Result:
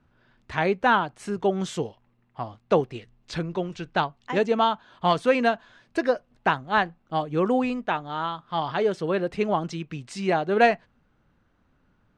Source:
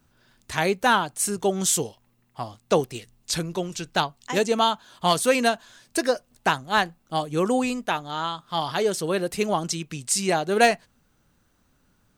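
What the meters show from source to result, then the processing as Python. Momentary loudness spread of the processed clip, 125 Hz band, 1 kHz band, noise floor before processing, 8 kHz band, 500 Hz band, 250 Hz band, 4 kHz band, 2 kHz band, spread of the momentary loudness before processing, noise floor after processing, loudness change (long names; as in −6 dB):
12 LU, 0.0 dB, 0.0 dB, −66 dBFS, below −15 dB, 0.0 dB, 0.0 dB, −7.0 dB, −1.0 dB, 10 LU, −66 dBFS, −1.5 dB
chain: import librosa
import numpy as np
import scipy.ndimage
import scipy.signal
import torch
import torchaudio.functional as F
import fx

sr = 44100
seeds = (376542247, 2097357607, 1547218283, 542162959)

y = scipy.signal.sosfilt(scipy.signal.butter(2, 2500.0, 'lowpass', fs=sr, output='sos'), x)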